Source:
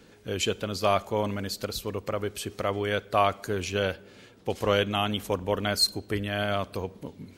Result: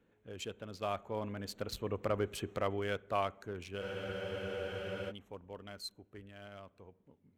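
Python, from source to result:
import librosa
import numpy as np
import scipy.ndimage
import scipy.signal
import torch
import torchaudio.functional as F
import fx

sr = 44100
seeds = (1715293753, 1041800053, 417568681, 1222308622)

y = fx.wiener(x, sr, points=9)
y = fx.doppler_pass(y, sr, speed_mps=6, closest_m=2.7, pass_at_s=2.19)
y = fx.spec_freeze(y, sr, seeds[0], at_s=3.82, hold_s=1.27)
y = F.gain(torch.from_numpy(y), -3.0).numpy()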